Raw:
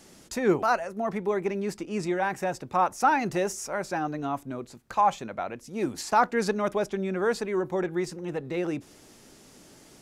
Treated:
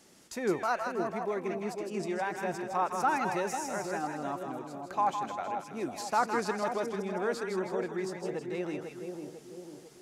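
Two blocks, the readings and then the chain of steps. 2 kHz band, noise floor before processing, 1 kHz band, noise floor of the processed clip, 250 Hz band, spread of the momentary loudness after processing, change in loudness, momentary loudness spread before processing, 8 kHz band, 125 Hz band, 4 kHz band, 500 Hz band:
-4.5 dB, -54 dBFS, -4.5 dB, -52 dBFS, -5.5 dB, 12 LU, -5.0 dB, 11 LU, -4.5 dB, -7.0 dB, -4.5 dB, -5.0 dB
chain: bass shelf 96 Hz -11 dB; two-band feedback delay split 830 Hz, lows 498 ms, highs 160 ms, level -5 dB; trim -6 dB

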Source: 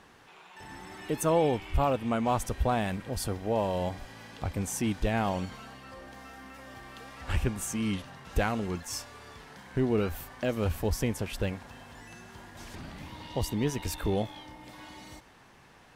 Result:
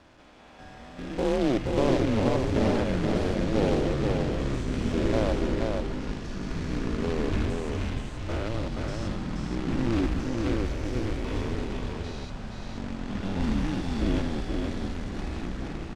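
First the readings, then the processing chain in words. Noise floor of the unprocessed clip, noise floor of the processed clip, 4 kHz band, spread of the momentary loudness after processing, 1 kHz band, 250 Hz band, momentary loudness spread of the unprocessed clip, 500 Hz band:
-57 dBFS, -45 dBFS, +2.5 dB, 10 LU, -2.0 dB, +5.5 dB, 19 LU, +3.0 dB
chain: spectrogram pixelated in time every 200 ms; bass shelf 150 Hz +5 dB; frequency shift -130 Hz; small resonant body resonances 300/530/3400 Hz, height 8 dB, ringing for 25 ms; companded quantiser 4-bit; ever faster or slower copies 185 ms, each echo -5 st, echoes 3; distance through air 110 m; delay 477 ms -3.5 dB; trim -2 dB

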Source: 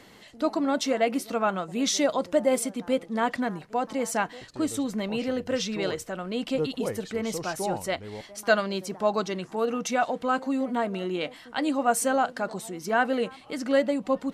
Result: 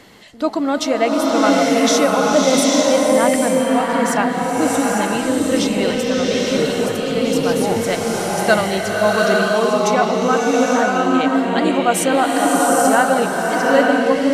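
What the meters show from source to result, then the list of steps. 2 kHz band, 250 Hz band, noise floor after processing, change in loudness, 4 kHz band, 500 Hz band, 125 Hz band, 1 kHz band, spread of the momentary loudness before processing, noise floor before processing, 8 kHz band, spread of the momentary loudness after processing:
+11.5 dB, +11.5 dB, -22 dBFS, +11.5 dB, +11.5 dB, +11.5 dB, +12.0 dB, +11.5 dB, 8 LU, -50 dBFS, +11.5 dB, 5 LU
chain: swelling reverb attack 840 ms, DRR -3.5 dB; trim +6.5 dB

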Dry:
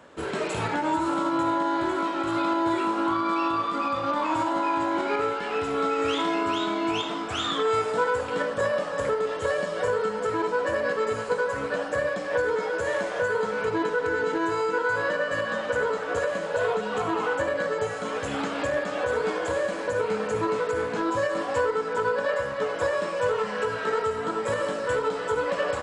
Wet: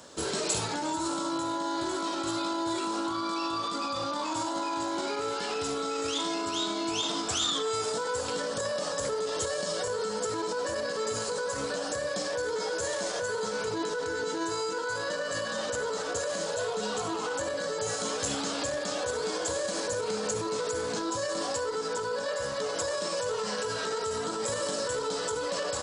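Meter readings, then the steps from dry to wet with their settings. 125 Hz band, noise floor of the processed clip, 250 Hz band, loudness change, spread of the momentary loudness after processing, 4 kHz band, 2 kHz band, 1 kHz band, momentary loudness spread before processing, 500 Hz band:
-5.0 dB, -34 dBFS, -5.5 dB, -4.5 dB, 2 LU, +3.5 dB, -7.5 dB, -6.5 dB, 3 LU, -5.5 dB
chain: peak limiter -24 dBFS, peak gain reduction 10 dB; resonant high shelf 3.4 kHz +13 dB, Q 1.5

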